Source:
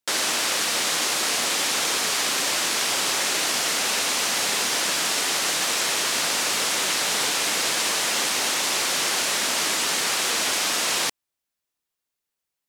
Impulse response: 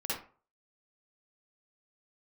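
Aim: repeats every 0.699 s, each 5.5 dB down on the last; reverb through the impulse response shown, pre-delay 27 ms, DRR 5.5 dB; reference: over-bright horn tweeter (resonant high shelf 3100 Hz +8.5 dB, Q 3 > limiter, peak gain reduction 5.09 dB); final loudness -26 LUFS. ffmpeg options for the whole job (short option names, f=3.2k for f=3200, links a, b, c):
-filter_complex "[0:a]aecho=1:1:699|1398|2097|2796|3495|4194|4893:0.531|0.281|0.149|0.079|0.0419|0.0222|0.0118,asplit=2[a][b];[1:a]atrim=start_sample=2205,adelay=27[c];[b][c]afir=irnorm=-1:irlink=0,volume=-10dB[d];[a][d]amix=inputs=2:normalize=0,highshelf=f=3.1k:t=q:w=3:g=8.5,volume=-14.5dB,alimiter=limit=-19dB:level=0:latency=1"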